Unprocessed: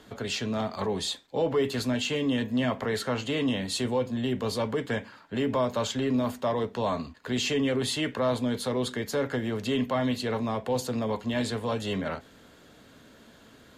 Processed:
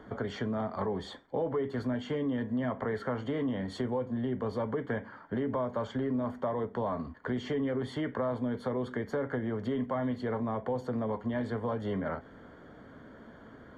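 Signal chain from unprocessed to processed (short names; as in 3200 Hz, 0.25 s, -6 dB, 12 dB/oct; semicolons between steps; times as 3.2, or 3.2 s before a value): polynomial smoothing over 41 samples; compressor 3:1, threshold -35 dBFS, peak gain reduction 10.5 dB; gain +3.5 dB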